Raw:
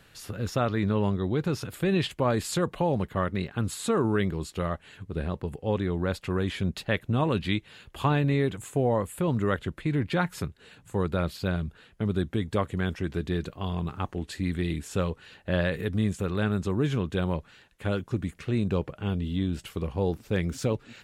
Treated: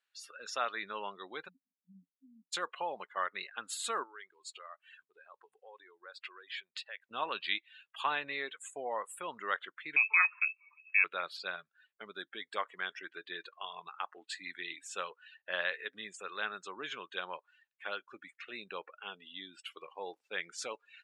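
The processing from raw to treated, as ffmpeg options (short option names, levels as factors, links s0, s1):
-filter_complex "[0:a]asplit=3[s0][s1][s2];[s0]afade=t=out:st=1.47:d=0.02[s3];[s1]asuperpass=centerf=220:order=20:qfactor=2.2,afade=t=in:st=1.47:d=0.02,afade=t=out:st=2.52:d=0.02[s4];[s2]afade=t=in:st=2.52:d=0.02[s5];[s3][s4][s5]amix=inputs=3:normalize=0,asettb=1/sr,asplit=3[s6][s7][s8];[s6]atrim=end=4.034[s9];[s7]atrim=start=4.03:end=7.11,asetpts=PTS-STARTPTS,afade=t=in:d=0.004:c=qsin,afade=t=out:st=3.076:d=0.004:c=qsin,acompressor=threshold=0.02:ratio=6:attack=3.2:release=140:knee=1:detection=peak[s10];[s8]atrim=start=7.106[s11];[s9][s10]acrossfade=d=0.004:c1=hsin:c2=qsin[s12];[s12][s11]acrossfade=d=0.004:c1=qsin:c2=hsin,asettb=1/sr,asplit=3[s13][s14][s15];[s13]atrim=end=9.964[s16];[s14]atrim=start=9.96:end=11.04,asetpts=PTS-STARTPTS,afade=t=in:d=0.004:c=qsin,afade=t=out:st=1.076:d=0.004:c=qsin,lowpass=f=2300:t=q:w=0.5098,lowpass=f=2300:t=q:w=0.6013,lowpass=f=2300:t=q:w=0.9,lowpass=f=2300:t=q:w=2.563,afreqshift=-2700[s17];[s15]atrim=start=11.036[s18];[s16][s17]acrossfade=d=0.004:c1=hsin:c2=qsin[s19];[s19][s18]acrossfade=d=0.004:c1=qsin:c2=hsin,highpass=1100,afftdn=nr=26:nf=-46,lowpass=9700"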